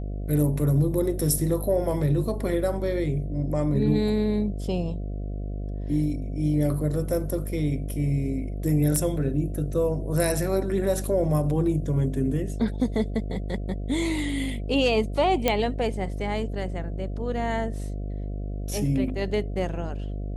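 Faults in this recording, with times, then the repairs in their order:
buzz 50 Hz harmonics 14 -31 dBFS
8.96 s: pop -13 dBFS
15.48 s: pop -7 dBFS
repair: de-click; de-hum 50 Hz, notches 14

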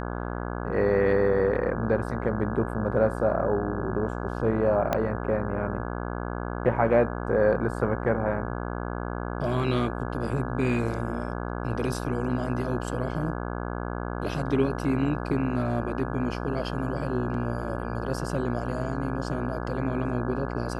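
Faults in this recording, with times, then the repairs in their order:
buzz 60 Hz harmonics 28 -32 dBFS
4.93 s: pop -11 dBFS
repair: de-click; de-hum 60 Hz, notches 28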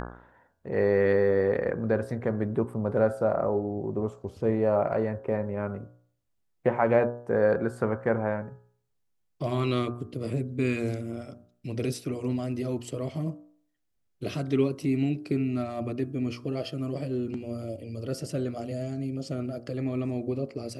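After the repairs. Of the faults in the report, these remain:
4.93 s: pop

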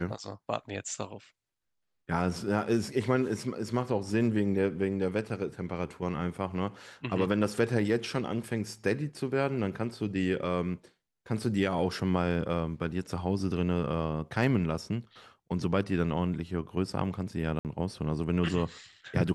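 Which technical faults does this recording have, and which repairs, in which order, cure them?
17.59–17.65 s: dropout 58 ms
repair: interpolate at 17.59 s, 58 ms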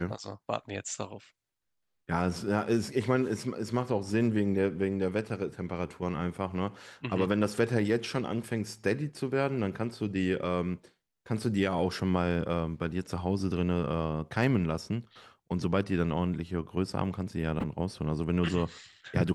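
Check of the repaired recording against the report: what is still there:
nothing left

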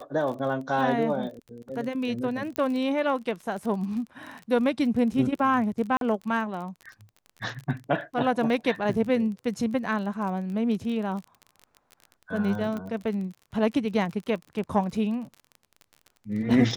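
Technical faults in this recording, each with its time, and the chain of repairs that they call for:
crackle 31 per s -34 dBFS
2.56 s: pop -14 dBFS
5.97–6.01 s: dropout 42 ms
12.77 s: pop -22 dBFS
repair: de-click; interpolate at 5.97 s, 42 ms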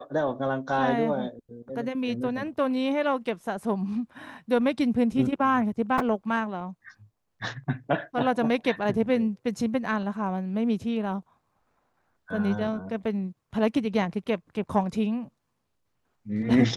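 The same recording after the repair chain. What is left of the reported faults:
nothing left

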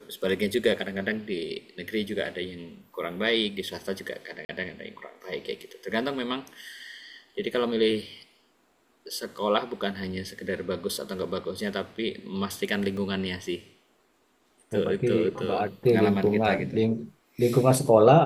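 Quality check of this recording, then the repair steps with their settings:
4.45–4.49 s: dropout 40 ms
12.97 s: dropout 3 ms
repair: interpolate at 4.45 s, 40 ms; interpolate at 12.97 s, 3 ms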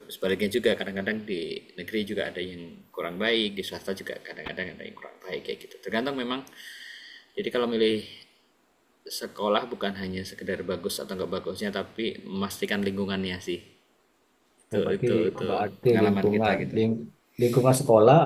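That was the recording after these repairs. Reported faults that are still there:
nothing left

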